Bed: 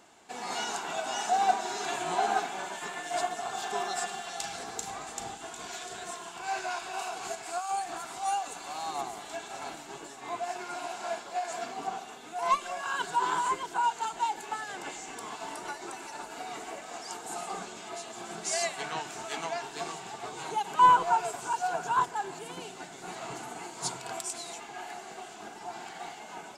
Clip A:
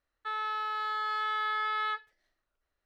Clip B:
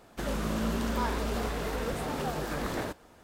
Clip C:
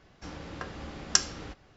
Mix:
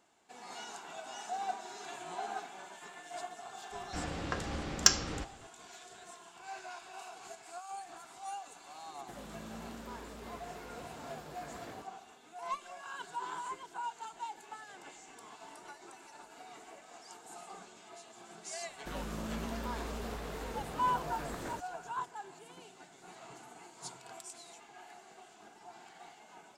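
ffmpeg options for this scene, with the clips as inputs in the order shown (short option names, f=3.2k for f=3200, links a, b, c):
-filter_complex "[2:a]asplit=2[a][b];[0:a]volume=-12dB[c];[3:a]acontrast=70[d];[a]highpass=f=63:w=0.5412,highpass=f=63:w=1.3066[e];[d]atrim=end=1.76,asetpts=PTS-STARTPTS,volume=-4dB,afade=t=in:d=0.004:c=hsin,afade=t=out:st=1.756:d=0.004:c=hsin,adelay=3710[f];[e]atrim=end=3.23,asetpts=PTS-STARTPTS,volume=-15.5dB,afade=t=in:d=0.004:c=hsin,afade=t=out:st=3.226:d=0.004:c=hsin,adelay=392490S[g];[b]atrim=end=3.23,asetpts=PTS-STARTPTS,volume=-9dB,afade=t=in:d=0.004:c=hsin,afade=t=out:st=3.226:d=0.004:c=hsin,adelay=18680[h];[c][f][g][h]amix=inputs=4:normalize=0"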